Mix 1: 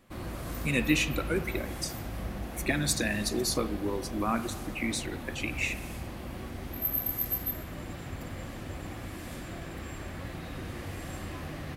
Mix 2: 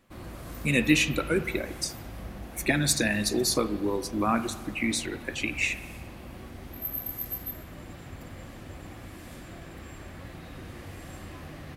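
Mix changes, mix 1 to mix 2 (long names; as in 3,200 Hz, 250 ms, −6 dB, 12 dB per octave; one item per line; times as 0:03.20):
speech +4.0 dB
background −3.5 dB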